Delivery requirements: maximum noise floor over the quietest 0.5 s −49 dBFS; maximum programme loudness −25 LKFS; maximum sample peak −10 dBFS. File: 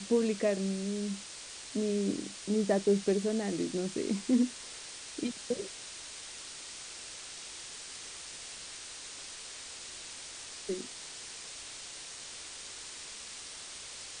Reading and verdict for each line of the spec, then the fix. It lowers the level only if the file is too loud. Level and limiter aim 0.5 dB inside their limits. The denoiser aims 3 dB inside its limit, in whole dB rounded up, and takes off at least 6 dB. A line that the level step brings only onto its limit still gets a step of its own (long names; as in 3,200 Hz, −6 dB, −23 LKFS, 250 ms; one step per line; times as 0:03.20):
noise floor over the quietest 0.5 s −46 dBFS: out of spec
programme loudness −35.5 LKFS: in spec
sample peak −16.5 dBFS: in spec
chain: broadband denoise 6 dB, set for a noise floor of −46 dBFS